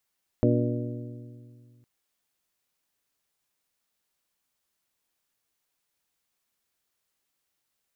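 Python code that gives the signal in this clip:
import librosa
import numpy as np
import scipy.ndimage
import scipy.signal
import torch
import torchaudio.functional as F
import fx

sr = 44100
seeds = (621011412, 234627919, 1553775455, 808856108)

y = fx.strike_metal(sr, length_s=1.41, level_db=-22, body='bell', hz=120.0, decay_s=2.41, tilt_db=1, modes=6)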